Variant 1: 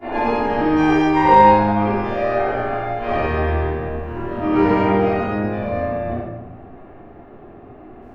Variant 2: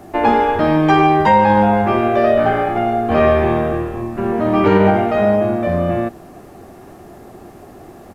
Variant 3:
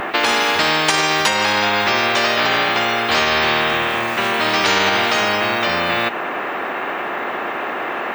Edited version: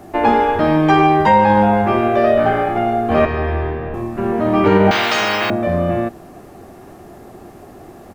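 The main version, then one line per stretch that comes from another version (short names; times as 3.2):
2
3.25–3.94 from 1
4.91–5.5 from 3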